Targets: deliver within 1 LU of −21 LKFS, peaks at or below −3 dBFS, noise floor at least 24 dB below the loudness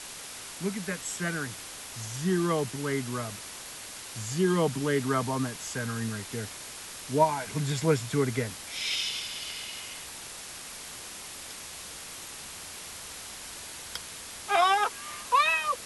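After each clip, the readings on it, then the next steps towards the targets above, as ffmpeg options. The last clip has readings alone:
background noise floor −43 dBFS; target noise floor −55 dBFS; integrated loudness −31.0 LKFS; sample peak −10.0 dBFS; target loudness −21.0 LKFS
→ -af "afftdn=noise_reduction=12:noise_floor=-43"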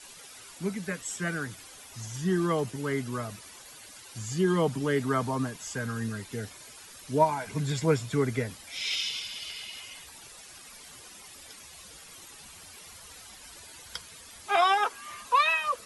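background noise floor −49 dBFS; target noise floor −53 dBFS
→ -af "afftdn=noise_reduction=6:noise_floor=-49"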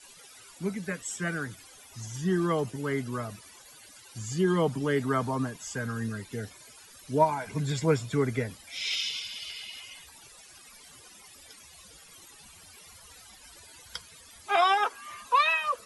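background noise floor −52 dBFS; target noise floor −54 dBFS
→ -af "afftdn=noise_reduction=6:noise_floor=-52"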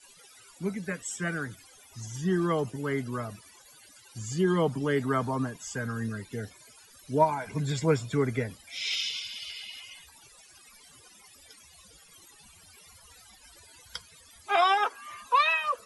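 background noise floor −56 dBFS; integrated loudness −29.5 LKFS; sample peak −10.0 dBFS; target loudness −21.0 LKFS
→ -af "volume=8.5dB,alimiter=limit=-3dB:level=0:latency=1"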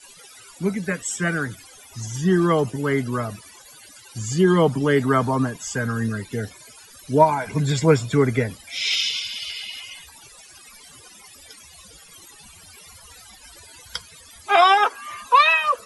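integrated loudness −21.0 LKFS; sample peak −3.0 dBFS; background noise floor −47 dBFS

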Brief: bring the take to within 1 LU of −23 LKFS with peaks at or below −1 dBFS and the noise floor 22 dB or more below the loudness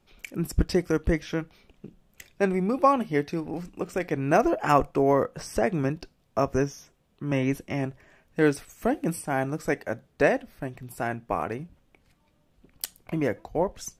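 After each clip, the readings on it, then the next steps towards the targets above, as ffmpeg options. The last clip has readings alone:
integrated loudness −27.0 LKFS; sample peak −5.5 dBFS; target loudness −23.0 LKFS
→ -af "volume=4dB"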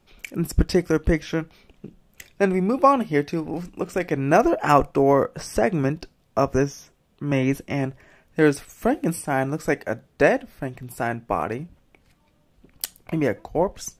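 integrated loudness −23.0 LKFS; sample peak −1.5 dBFS; background noise floor −63 dBFS

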